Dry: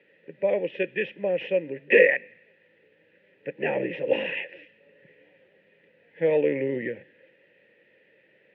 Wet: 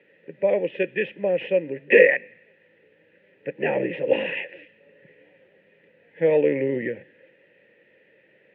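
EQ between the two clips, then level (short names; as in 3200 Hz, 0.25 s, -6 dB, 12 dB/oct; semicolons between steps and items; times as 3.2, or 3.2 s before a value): air absorption 150 m; +3.5 dB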